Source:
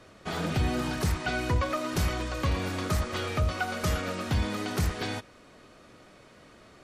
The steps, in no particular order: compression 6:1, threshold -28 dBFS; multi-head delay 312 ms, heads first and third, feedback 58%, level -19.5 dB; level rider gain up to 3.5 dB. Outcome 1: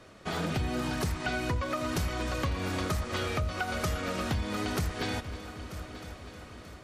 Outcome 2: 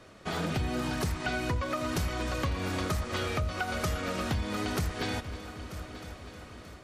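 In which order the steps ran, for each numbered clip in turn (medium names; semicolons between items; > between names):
level rider > multi-head delay > compression; multi-head delay > level rider > compression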